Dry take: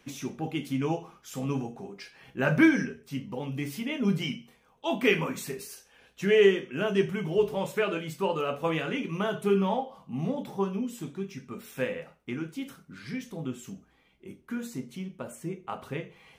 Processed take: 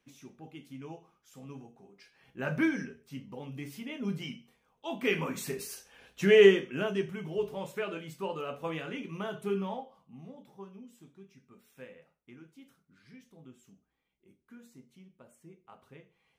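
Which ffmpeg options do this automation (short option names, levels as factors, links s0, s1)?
-af "volume=1.19,afade=t=in:st=1.87:d=0.61:silence=0.421697,afade=t=in:st=4.98:d=0.71:silence=0.334965,afade=t=out:st=6.52:d=0.5:silence=0.354813,afade=t=out:st=9.54:d=0.69:silence=0.298538"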